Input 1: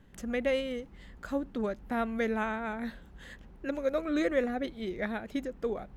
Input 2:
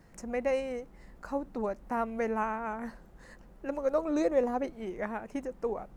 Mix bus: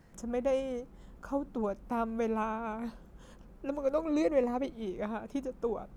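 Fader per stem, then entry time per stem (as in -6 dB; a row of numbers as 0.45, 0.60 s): -9.5, -2.0 dB; 0.00, 0.00 s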